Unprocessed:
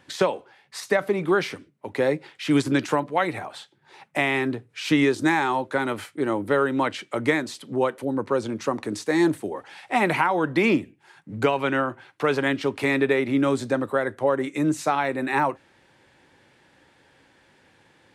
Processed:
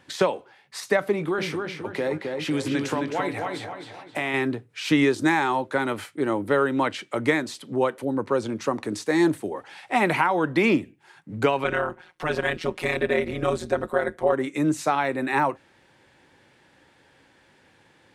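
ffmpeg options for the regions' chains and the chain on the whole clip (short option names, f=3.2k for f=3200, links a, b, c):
-filter_complex "[0:a]asettb=1/sr,asplit=3[a][b][c];[a]atrim=end=1.124[d];[b]atrim=start=1.12:end=4.34,asetpts=PTS-STARTPTS,afade=t=in:d=0.004:c=qsin,afade=t=out:st=3.216:d=0.004:c=qsin,asplit=2[e][f];[f]adelay=19,volume=-13.5dB[g];[e][g]amix=inputs=2:normalize=0,atrim=end_sample=142002,acompressor=threshold=-23dB:ratio=3:attack=3.2:release=140:knee=1:detection=peak,asplit=2[h][i];[i]adelay=264,lowpass=f=4.6k:p=1,volume=-4dB,asplit=2[j][k];[k]adelay=264,lowpass=f=4.6k:p=1,volume=0.42,asplit=2[l][m];[m]adelay=264,lowpass=f=4.6k:p=1,volume=0.42,asplit=2[n][o];[o]adelay=264,lowpass=f=4.6k:p=1,volume=0.42,asplit=2[p][q];[q]adelay=264,lowpass=f=4.6k:p=1,volume=0.42[r];[h][j][l][n][p][r]amix=inputs=6:normalize=0,atrim=end_sample=142002[s];[c]atrim=start=4.336[t];[d][s]acrossfade=d=0.004:c1=hsin:c2=qsin[u];[u][t]acrossfade=d=0.004:c1=qsin:c2=hsin,asettb=1/sr,asplit=3[v][w][x];[v]atrim=end=11.644[y];[w]atrim=start=11.64:end=14.33,asetpts=PTS-STARTPTS,afade=t=in:d=0.004:c=qsin,afade=t=out:st=2.686:d=0.004:c=qsin,aecho=1:1:5.5:0.82,atrim=end_sample=118629,tremolo=f=170:d=0.824[z];[x]atrim=start=14.326[aa];[y][z]acrossfade=d=0.004:c1=hsin:c2=qsin[ab];[ab][aa]acrossfade=d=0.004:c1=qsin:c2=hsin"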